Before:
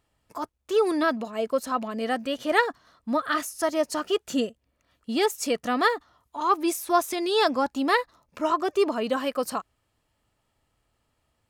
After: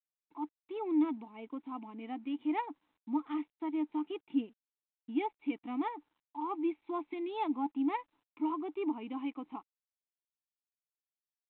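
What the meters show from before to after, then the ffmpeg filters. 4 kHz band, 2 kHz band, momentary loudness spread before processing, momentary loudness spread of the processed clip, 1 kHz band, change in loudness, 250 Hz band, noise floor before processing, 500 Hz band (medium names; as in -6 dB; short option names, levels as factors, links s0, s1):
-22.5 dB, -21.0 dB, 11 LU, 12 LU, -12.5 dB, -11.0 dB, -4.5 dB, -75 dBFS, -17.0 dB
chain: -filter_complex "[0:a]agate=range=0.0224:threshold=0.00224:ratio=3:detection=peak,asplit=3[s0][s1][s2];[s0]bandpass=f=300:t=q:w=8,volume=1[s3];[s1]bandpass=f=870:t=q:w=8,volume=0.501[s4];[s2]bandpass=f=2240:t=q:w=8,volume=0.355[s5];[s3][s4][s5]amix=inputs=3:normalize=0" -ar 8000 -c:a adpcm_g726 -b:a 40k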